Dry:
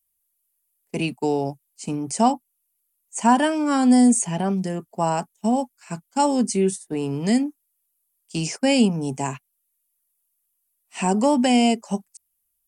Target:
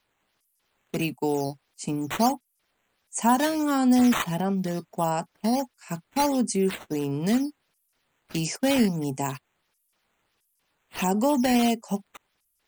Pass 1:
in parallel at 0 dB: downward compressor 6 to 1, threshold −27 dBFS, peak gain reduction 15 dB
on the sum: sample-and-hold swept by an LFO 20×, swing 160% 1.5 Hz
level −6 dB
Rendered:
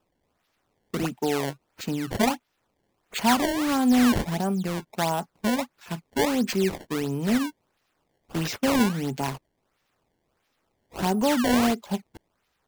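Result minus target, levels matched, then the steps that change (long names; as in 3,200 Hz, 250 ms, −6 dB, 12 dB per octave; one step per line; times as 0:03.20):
sample-and-hold swept by an LFO: distortion +9 dB
change: sample-and-hold swept by an LFO 5×, swing 160% 1.5 Hz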